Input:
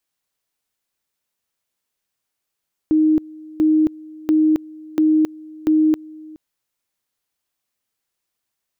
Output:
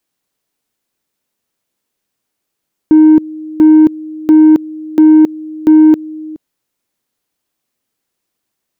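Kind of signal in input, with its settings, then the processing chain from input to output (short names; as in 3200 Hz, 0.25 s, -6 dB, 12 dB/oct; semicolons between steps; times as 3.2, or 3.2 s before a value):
two-level tone 311 Hz -11.5 dBFS, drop 23 dB, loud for 0.27 s, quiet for 0.42 s, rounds 5
bell 270 Hz +8 dB 2.1 oct; in parallel at -3.5 dB: soft clip -12.5 dBFS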